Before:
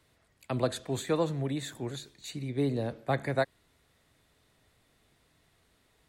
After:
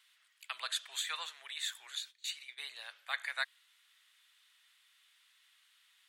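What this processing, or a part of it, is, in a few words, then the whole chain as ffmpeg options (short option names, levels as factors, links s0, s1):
headphones lying on a table: -filter_complex "[0:a]highpass=f=1300:w=0.5412,highpass=f=1300:w=1.3066,equalizer=f=3100:t=o:w=0.51:g=8,asettb=1/sr,asplit=3[s0][s1][s2];[s0]atrim=end=1.954[s3];[s1]atrim=start=1.95:end=2.64,asetpts=PTS-STARTPTS,afade=t=in:d=0.004:c=qsin,afade=t=out:st=0.686:d=0.004:c=qsin,agate=range=0.224:threshold=0.00316:ratio=16:detection=peak[s4];[s2]atrim=start=2.636[s5];[s3][s4]acrossfade=d=0.004:c1=hsin:c2=qsin[s6];[s6][s5]acrossfade=d=0.004:c1=qsin:c2=hsin,volume=1.12"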